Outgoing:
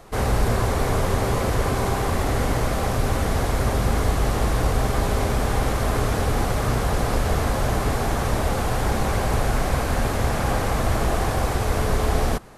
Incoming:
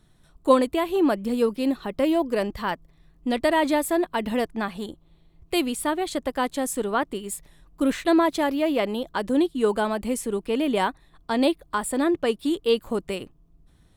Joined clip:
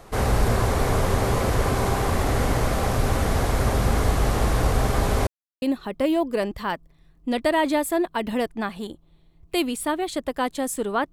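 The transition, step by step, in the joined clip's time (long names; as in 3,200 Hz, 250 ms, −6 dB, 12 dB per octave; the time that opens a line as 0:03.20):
outgoing
0:05.27–0:05.62: silence
0:05.62: continue with incoming from 0:01.61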